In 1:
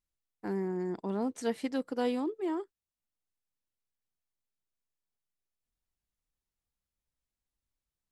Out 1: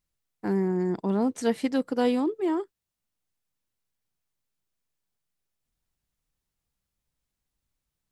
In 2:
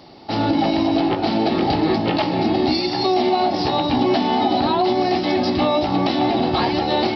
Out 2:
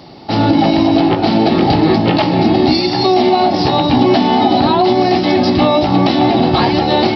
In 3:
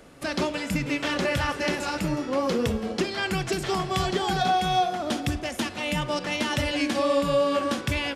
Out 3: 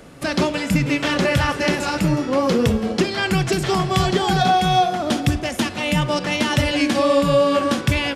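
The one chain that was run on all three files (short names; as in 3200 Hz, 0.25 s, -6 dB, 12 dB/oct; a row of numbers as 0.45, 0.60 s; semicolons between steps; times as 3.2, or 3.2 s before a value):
bell 140 Hz +5 dB 1.2 oct; gain +6 dB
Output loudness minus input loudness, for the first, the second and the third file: +7.0, +7.0, +7.0 LU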